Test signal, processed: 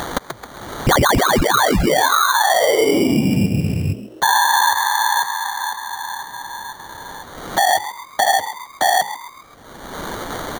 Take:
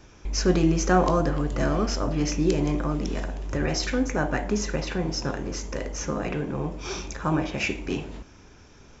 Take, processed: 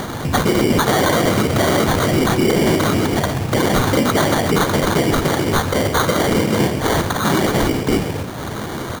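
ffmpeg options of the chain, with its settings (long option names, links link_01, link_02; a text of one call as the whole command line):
ffmpeg -i in.wav -filter_complex "[0:a]afftfilt=real='hypot(re,im)*cos(2*PI*random(0))':imag='hypot(re,im)*sin(2*PI*random(1))':win_size=512:overlap=0.75,highpass=frequency=90:width=0.5412,highpass=frequency=90:width=1.3066,lowshelf=frequency=160:gain=3,bandreject=frequency=60:width_type=h:width=6,bandreject=frequency=120:width_type=h:width=6,bandreject=frequency=180:width_type=h:width=6,bandreject=frequency=240:width_type=h:width=6,bandreject=frequency=300:width_type=h:width=6,bandreject=frequency=360:width_type=h:width=6,bandreject=frequency=420:width_type=h:width=6,bandreject=frequency=480:width_type=h:width=6,bandreject=frequency=540:width_type=h:width=6,acompressor=mode=upward:threshold=-37dB:ratio=2.5,aemphasis=mode=production:type=50fm,aeval=exprs='0.158*(abs(mod(val(0)/0.158+3,4)-2)-1)':channel_layout=same,acrossover=split=200|460[link_01][link_02][link_03];[link_01]acompressor=threshold=-41dB:ratio=4[link_04];[link_02]acompressor=threshold=-35dB:ratio=4[link_05];[link_03]acompressor=threshold=-32dB:ratio=4[link_06];[link_04][link_05][link_06]amix=inputs=3:normalize=0,acrusher=samples=17:mix=1:aa=0.000001,asplit=5[link_07][link_08][link_09][link_10][link_11];[link_08]adelay=133,afreqshift=110,volume=-14.5dB[link_12];[link_09]adelay=266,afreqshift=220,volume=-21.6dB[link_13];[link_10]adelay=399,afreqshift=330,volume=-28.8dB[link_14];[link_11]adelay=532,afreqshift=440,volume=-35.9dB[link_15];[link_07][link_12][link_13][link_14][link_15]amix=inputs=5:normalize=0,alimiter=level_in=27.5dB:limit=-1dB:release=50:level=0:latency=1,volume=-6.5dB" out.wav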